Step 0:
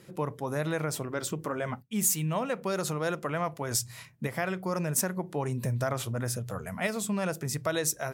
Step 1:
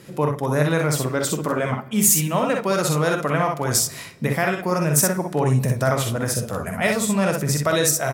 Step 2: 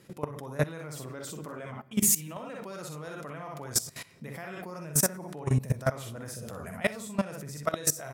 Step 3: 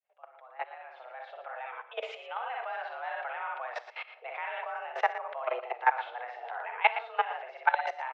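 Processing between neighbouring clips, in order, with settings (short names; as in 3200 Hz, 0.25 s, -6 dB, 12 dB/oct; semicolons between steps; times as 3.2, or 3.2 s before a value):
on a send: early reflections 47 ms -8 dB, 61 ms -5 dB; on the sum: shoebox room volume 1700 m³, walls mixed, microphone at 0.32 m; gain +8.5 dB
level quantiser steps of 18 dB; gain -4 dB
opening faded in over 2.41 s; mistuned SSB +240 Hz 340–2900 Hz; echo 0.116 s -12.5 dB; gain +5 dB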